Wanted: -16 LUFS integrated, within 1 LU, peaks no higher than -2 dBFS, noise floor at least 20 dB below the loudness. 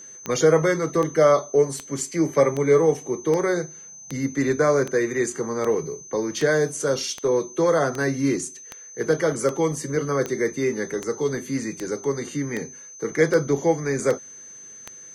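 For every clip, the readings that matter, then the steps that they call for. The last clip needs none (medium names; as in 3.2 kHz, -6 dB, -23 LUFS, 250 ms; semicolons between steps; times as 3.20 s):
clicks found 20; steady tone 6.2 kHz; tone level -40 dBFS; loudness -23.0 LUFS; peak level -6.0 dBFS; loudness target -16.0 LUFS
-> de-click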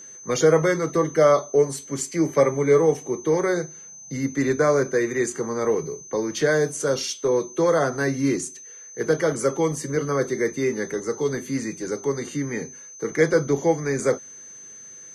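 clicks found 0; steady tone 6.2 kHz; tone level -40 dBFS
-> band-stop 6.2 kHz, Q 30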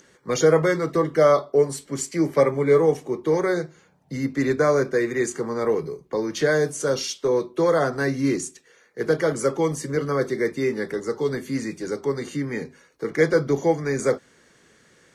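steady tone not found; loudness -23.0 LUFS; peak level -6.0 dBFS; loudness target -16.0 LUFS
-> trim +7 dB; peak limiter -2 dBFS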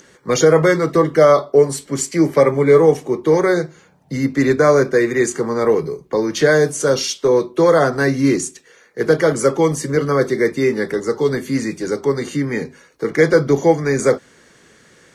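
loudness -16.5 LUFS; peak level -2.0 dBFS; noise floor -51 dBFS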